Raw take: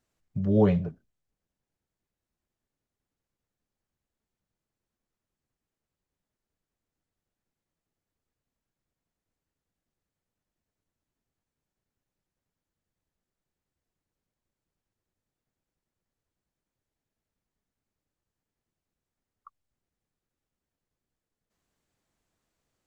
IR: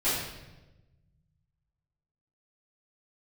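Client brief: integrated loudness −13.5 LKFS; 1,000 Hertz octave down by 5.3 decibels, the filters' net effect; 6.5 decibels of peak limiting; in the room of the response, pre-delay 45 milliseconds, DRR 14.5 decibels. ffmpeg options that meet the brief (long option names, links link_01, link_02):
-filter_complex "[0:a]equalizer=frequency=1000:width_type=o:gain=-7.5,alimiter=limit=-17.5dB:level=0:latency=1,asplit=2[link_01][link_02];[1:a]atrim=start_sample=2205,adelay=45[link_03];[link_02][link_03]afir=irnorm=-1:irlink=0,volume=-25.5dB[link_04];[link_01][link_04]amix=inputs=2:normalize=0,volume=15.5dB"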